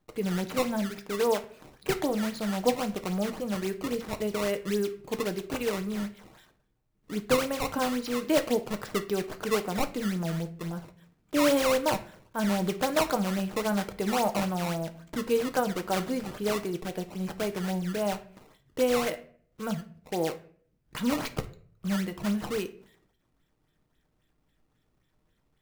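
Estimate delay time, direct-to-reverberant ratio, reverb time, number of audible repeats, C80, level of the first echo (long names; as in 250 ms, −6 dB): no echo audible, 8.0 dB, 0.50 s, no echo audible, 19.0 dB, no echo audible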